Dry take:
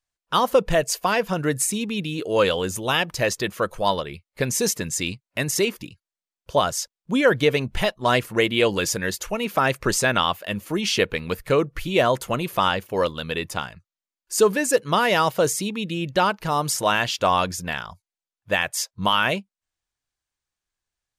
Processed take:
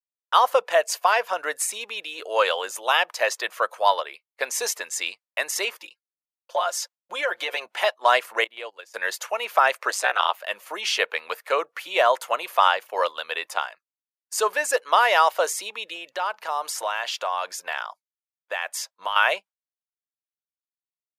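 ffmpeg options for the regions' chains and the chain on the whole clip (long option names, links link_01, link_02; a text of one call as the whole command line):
ffmpeg -i in.wav -filter_complex "[0:a]asettb=1/sr,asplit=3[link_01][link_02][link_03];[link_01]atrim=end=5.814[link_04];[link_02]atrim=start=5.81:end=7.66,asetpts=PTS-STARTPTS,afade=type=in:duration=0.004:curve=qsin,afade=type=out:start_time=1.846:duration=0.004:curve=qsin,equalizer=frequency=80:width=1.4:gain=-8.5,aecho=1:1:5.7:0.68,atrim=end_sample=81585,acompressor=threshold=-21dB:ratio=4:attack=3.2:release=140:knee=1:detection=peak[link_05];[link_03]atrim=start=7.656[link_06];[link_04][link_05]acrossfade=duration=0.004:curve1=hsin:curve2=qsin[link_07];[link_07][link_06]acrossfade=duration=0.004:curve1=qsin:curve2=hsin,asettb=1/sr,asplit=3[link_08][link_09][link_10];[link_08]atrim=end=8.444[link_11];[link_09]atrim=start=8.44:end=8.94,asetpts=PTS-STARTPTS,afade=type=in:duration=0.004:curve=qsin,afade=type=out:start_time=0.496:duration=0.004:curve=qsin,agate=range=-20dB:threshold=-21dB:ratio=16:release=100:detection=peak,lowshelf=frequency=380:gain=6.5,acompressor=threshold=-35dB:ratio=2.5:attack=3.2:release=140:knee=1:detection=peak[link_12];[link_10]atrim=start=8.936[link_13];[link_11][link_12]acrossfade=duration=0.004:curve1=hsin:curve2=qsin[link_14];[link_14][link_13]acrossfade=duration=0.004:curve1=qsin:curve2=hsin,asettb=1/sr,asplit=3[link_15][link_16][link_17];[link_15]atrim=end=9.904[link_18];[link_16]atrim=start=9.9:end=10.4,asetpts=PTS-STARTPTS,afade=type=in:duration=0.004:curve=qsin,afade=type=out:start_time=0.496:duration=0.004:curve=qsin,highpass=frequency=320:width=0.5412,highpass=frequency=320:width=1.3066,aeval=exprs='val(0)*sin(2*PI*100*n/s)':channel_layout=same[link_19];[link_17]atrim=start=10.396[link_20];[link_18][link_19]acrossfade=duration=0.004:curve1=hsin:curve2=qsin[link_21];[link_21][link_20]acrossfade=duration=0.004:curve1=qsin:curve2=hsin,asettb=1/sr,asplit=3[link_22][link_23][link_24];[link_22]atrim=end=15.954[link_25];[link_23]atrim=start=15.95:end=19.16,asetpts=PTS-STARTPTS,afade=type=in:duration=0.004:curve=qsin,afade=type=out:start_time=3.206:duration=0.004:curve=qsin,acompressor=threshold=-23dB:ratio=10:attack=3.2:release=140:knee=1:detection=peak,bandreject=frequency=50:width_type=h:width=6,bandreject=frequency=100:width_type=h:width=6,bandreject=frequency=150:width_type=h:width=6,bandreject=frequency=200:width_type=h:width=6,bandreject=frequency=250:width_type=h:width=6[link_26];[link_24]atrim=start=19.156[link_27];[link_25][link_26]acrossfade=duration=0.004:curve1=hsin:curve2=qsin[link_28];[link_28][link_27]acrossfade=duration=0.004:curve1=qsin:curve2=hsin,agate=range=-33dB:threshold=-36dB:ratio=3:detection=peak,highpass=frequency=640:width=0.5412,highpass=frequency=640:width=1.3066,highshelf=frequency=2500:gain=-8.5,volume=5dB" out.wav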